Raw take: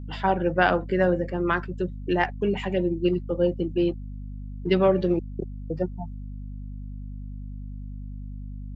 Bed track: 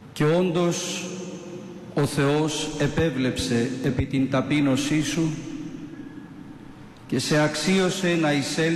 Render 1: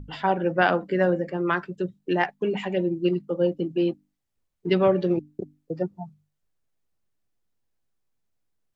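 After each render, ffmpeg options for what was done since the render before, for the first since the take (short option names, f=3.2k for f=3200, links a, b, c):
-af "bandreject=f=50:t=h:w=6,bandreject=f=100:t=h:w=6,bandreject=f=150:t=h:w=6,bandreject=f=200:t=h:w=6,bandreject=f=250:t=h:w=6,bandreject=f=300:t=h:w=6"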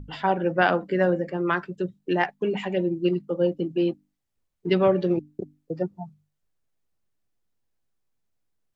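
-af anull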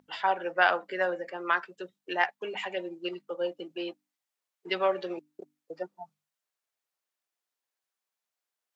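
-af "highpass=740"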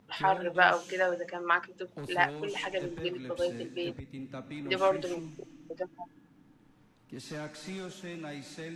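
-filter_complex "[1:a]volume=-19.5dB[a];[0:a][a]amix=inputs=2:normalize=0"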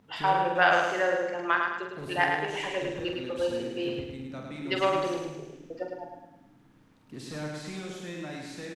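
-filter_complex "[0:a]asplit=2[a][b];[b]adelay=46,volume=-6dB[c];[a][c]amix=inputs=2:normalize=0,aecho=1:1:106|212|318|424|530|636:0.631|0.29|0.134|0.0614|0.0283|0.013"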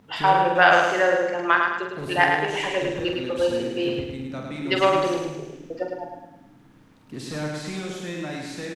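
-af "volume=6.5dB,alimiter=limit=-3dB:level=0:latency=1"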